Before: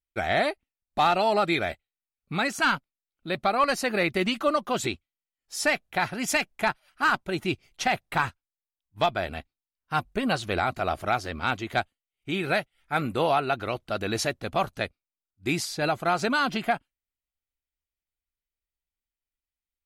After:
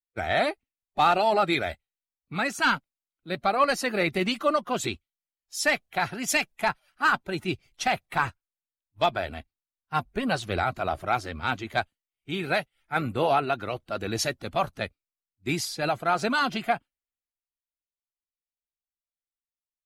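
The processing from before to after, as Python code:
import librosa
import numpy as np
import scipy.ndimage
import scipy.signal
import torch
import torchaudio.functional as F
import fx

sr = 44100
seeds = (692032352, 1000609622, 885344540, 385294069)

y = fx.spec_quant(x, sr, step_db=15)
y = fx.band_widen(y, sr, depth_pct=40)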